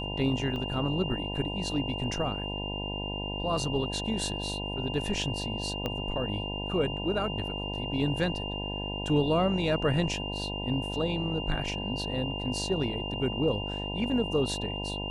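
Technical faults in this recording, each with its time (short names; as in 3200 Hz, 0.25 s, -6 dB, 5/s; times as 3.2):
buzz 50 Hz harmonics 20 -36 dBFS
tone 2800 Hz -36 dBFS
0.56 gap 2.5 ms
5.86 pop -18 dBFS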